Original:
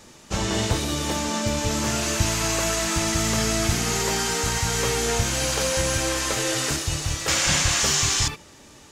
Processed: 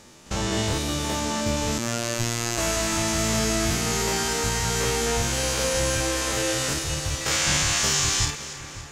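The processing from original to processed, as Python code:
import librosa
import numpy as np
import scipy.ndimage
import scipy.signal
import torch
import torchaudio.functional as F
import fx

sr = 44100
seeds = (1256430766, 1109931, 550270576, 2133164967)

y = fx.spec_steps(x, sr, hold_ms=50)
y = fx.echo_split(y, sr, split_hz=1900.0, low_ms=562, high_ms=281, feedback_pct=52, wet_db=-14)
y = fx.robotise(y, sr, hz=117.0, at=(1.78, 2.58))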